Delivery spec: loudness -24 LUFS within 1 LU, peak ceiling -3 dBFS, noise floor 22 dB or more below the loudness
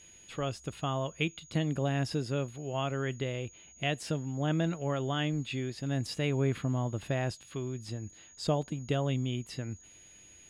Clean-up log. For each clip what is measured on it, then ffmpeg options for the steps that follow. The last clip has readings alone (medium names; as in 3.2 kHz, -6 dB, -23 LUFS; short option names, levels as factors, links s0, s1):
steady tone 6.7 kHz; tone level -54 dBFS; loudness -33.5 LUFS; peak level -17.0 dBFS; loudness target -24.0 LUFS
-> -af "bandreject=f=6700:w=30"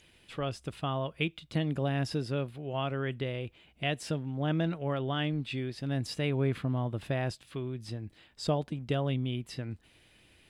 steady tone not found; loudness -33.5 LUFS; peak level -17.0 dBFS; loudness target -24.0 LUFS
-> -af "volume=2.99"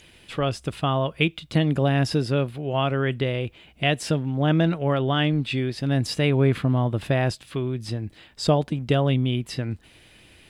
loudness -24.0 LUFS; peak level -7.5 dBFS; noise floor -54 dBFS